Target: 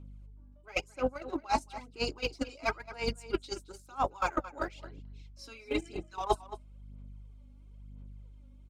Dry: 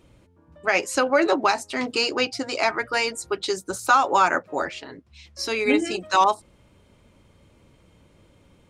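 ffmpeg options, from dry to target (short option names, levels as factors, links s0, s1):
-filter_complex "[0:a]aeval=exprs='val(0)+0.0178*(sin(2*PI*50*n/s)+sin(2*PI*2*50*n/s)/2+sin(2*PI*3*50*n/s)/3+sin(2*PI*4*50*n/s)/4+sin(2*PI*5*50*n/s)/5)':c=same,aphaser=in_gain=1:out_gain=1:delay=3.7:decay=0.61:speed=1:type=sinusoidal,bandreject=f=1800:w=5.3,areverse,acompressor=threshold=0.0562:ratio=16,areverse,agate=range=0.0708:threshold=0.0562:ratio=16:detection=peak,asplit=2[s0][s1];[s1]adelay=221.6,volume=0.178,highshelf=f=4000:g=-4.99[s2];[s0][s2]amix=inputs=2:normalize=0,volume=1.68"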